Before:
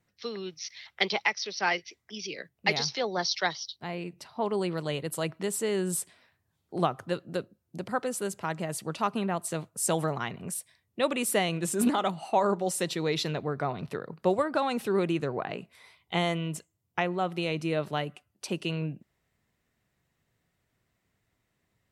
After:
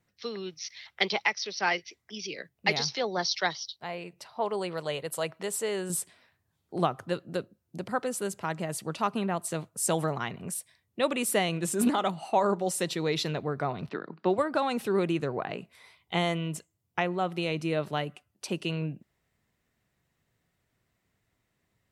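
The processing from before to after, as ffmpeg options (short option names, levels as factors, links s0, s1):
-filter_complex "[0:a]asettb=1/sr,asplit=3[s0][s1][s2];[s0]atrim=end=3.734[s3];[s1]atrim=start=3.73:end=5.9,asetpts=PTS-STARTPTS,afade=t=in:d=0.004:c=qsin,afade=t=out:st=2.166:d=0.004:c=qsin,lowshelf=f=400:t=q:w=1.5:g=-6[s4];[s2]atrim=start=5.896[s5];[s3][s4]acrossfade=d=0.004:c1=hsin:c2=qsin[s6];[s6][s5]acrossfade=d=0.004:c1=qsin:c2=hsin,asettb=1/sr,asplit=3[s7][s8][s9];[s7]atrim=end=13.894[s10];[s8]atrim=start=13.89:end=14.38,asetpts=PTS-STARTPTS,afade=t=in:d=0.004:c=qsin,afade=t=out:st=0.486:d=0.004:c=qsin,highpass=f=170:w=0.5412,highpass=f=170:w=1.3066,equalizer=f=320:t=q:w=4:g=6,equalizer=f=510:t=q:w=4:g=-8,equalizer=f=1500:t=q:w=4:g=3,lowpass=f=4900:w=0.5412,lowpass=f=4900:w=1.3066[s11];[s9]atrim=start=14.376[s12];[s10][s11]acrossfade=d=0.004:c1=hsin:c2=qsin[s13];[s13][s12]acrossfade=d=0.004:c1=qsin:c2=hsin"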